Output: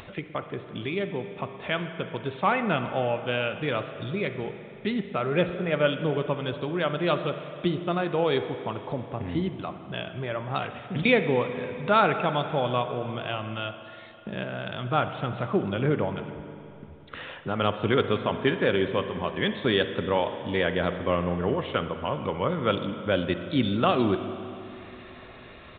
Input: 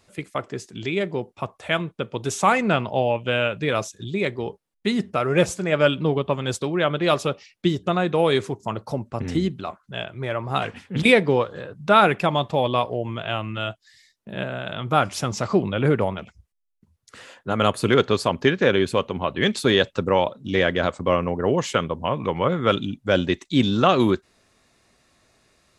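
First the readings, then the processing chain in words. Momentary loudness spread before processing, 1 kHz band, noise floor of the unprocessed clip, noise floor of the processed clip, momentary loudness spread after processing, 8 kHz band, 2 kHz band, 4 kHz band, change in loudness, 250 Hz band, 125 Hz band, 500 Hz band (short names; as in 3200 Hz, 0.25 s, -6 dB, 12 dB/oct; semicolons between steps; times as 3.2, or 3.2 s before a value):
12 LU, -5.0 dB, -68 dBFS, -46 dBFS, 13 LU, under -40 dB, -5.0 dB, -5.5 dB, -5.0 dB, -4.5 dB, -4.5 dB, -4.5 dB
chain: upward compressor, threshold -22 dBFS; downsampling 8000 Hz; spring tank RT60 3 s, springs 40/57 ms, chirp 45 ms, DRR 8.5 dB; gain -5.5 dB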